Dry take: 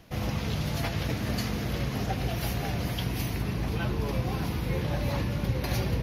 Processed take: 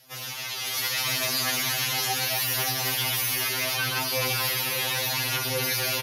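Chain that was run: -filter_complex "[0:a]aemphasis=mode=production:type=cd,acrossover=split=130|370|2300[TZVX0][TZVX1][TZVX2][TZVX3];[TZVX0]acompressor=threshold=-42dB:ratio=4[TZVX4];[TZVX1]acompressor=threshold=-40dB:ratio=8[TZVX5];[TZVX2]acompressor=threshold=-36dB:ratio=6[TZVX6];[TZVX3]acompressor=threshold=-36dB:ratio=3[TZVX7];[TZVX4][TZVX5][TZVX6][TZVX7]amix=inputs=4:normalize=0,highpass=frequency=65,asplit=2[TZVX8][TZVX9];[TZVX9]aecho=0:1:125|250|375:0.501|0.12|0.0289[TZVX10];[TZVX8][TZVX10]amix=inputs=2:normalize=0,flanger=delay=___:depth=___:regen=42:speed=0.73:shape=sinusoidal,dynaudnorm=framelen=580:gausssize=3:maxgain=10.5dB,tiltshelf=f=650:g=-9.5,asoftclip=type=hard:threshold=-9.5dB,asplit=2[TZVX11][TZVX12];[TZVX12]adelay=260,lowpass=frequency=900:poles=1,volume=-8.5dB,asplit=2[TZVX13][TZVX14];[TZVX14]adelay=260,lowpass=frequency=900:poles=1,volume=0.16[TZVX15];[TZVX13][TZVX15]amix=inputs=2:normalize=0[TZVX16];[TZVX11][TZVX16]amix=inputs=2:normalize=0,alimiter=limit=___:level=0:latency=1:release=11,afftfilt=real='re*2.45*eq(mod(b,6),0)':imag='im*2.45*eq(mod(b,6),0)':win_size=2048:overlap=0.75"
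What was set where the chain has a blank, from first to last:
7.5, 2.7, -15dB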